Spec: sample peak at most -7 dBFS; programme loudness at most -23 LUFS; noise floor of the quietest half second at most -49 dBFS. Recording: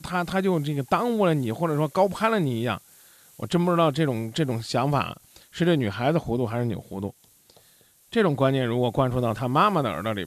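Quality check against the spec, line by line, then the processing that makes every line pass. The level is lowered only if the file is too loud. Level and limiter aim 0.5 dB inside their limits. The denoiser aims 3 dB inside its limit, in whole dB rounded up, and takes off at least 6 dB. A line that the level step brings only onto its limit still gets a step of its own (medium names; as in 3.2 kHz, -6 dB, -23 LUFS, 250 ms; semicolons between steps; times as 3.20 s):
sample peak -7.5 dBFS: pass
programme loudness -24.5 LUFS: pass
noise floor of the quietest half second -58 dBFS: pass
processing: none needed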